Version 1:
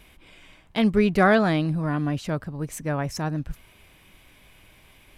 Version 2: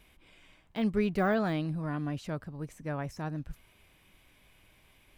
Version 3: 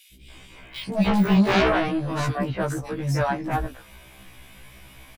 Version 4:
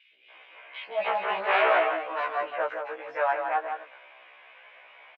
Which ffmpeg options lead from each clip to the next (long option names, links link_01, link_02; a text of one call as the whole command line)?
ffmpeg -i in.wav -af "deesser=0.9,volume=-8.5dB" out.wav
ffmpeg -i in.wav -filter_complex "[0:a]acrossover=split=370|2800[link_01][link_02][link_03];[link_01]adelay=130[link_04];[link_02]adelay=300[link_05];[link_04][link_05][link_03]amix=inputs=3:normalize=0,aeval=exprs='0.15*sin(PI/2*3.55*val(0)/0.15)':channel_layout=same,afftfilt=real='re*1.73*eq(mod(b,3),0)':imag='im*1.73*eq(mod(b,3),0)':win_size=2048:overlap=0.75,volume=3.5dB" out.wav
ffmpeg -i in.wav -af "asuperpass=centerf=1200:order=8:qfactor=0.52,aecho=1:1:166:0.473" out.wav